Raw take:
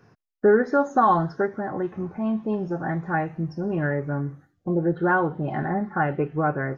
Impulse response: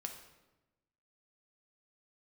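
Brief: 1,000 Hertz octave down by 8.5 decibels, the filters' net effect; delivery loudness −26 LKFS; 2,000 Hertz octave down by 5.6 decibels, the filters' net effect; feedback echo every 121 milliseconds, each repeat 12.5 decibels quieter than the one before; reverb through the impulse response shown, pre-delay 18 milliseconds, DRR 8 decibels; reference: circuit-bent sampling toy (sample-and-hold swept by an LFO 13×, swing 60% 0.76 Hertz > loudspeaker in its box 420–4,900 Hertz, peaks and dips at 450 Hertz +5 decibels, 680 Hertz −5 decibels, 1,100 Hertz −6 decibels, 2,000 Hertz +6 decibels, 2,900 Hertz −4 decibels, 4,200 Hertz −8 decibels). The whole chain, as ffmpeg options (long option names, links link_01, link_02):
-filter_complex "[0:a]equalizer=frequency=1000:width_type=o:gain=-5.5,equalizer=frequency=2000:width_type=o:gain=-6,aecho=1:1:121|242|363:0.237|0.0569|0.0137,asplit=2[link_01][link_02];[1:a]atrim=start_sample=2205,adelay=18[link_03];[link_02][link_03]afir=irnorm=-1:irlink=0,volume=-6dB[link_04];[link_01][link_04]amix=inputs=2:normalize=0,acrusher=samples=13:mix=1:aa=0.000001:lfo=1:lforange=7.8:lforate=0.76,highpass=420,equalizer=frequency=450:width_type=q:width=4:gain=5,equalizer=frequency=680:width_type=q:width=4:gain=-5,equalizer=frequency=1100:width_type=q:width=4:gain=-6,equalizer=frequency=2000:width_type=q:width=4:gain=6,equalizer=frequency=2900:width_type=q:width=4:gain=-4,equalizer=frequency=4200:width_type=q:width=4:gain=-8,lowpass=frequency=4900:width=0.5412,lowpass=frequency=4900:width=1.3066,volume=3dB"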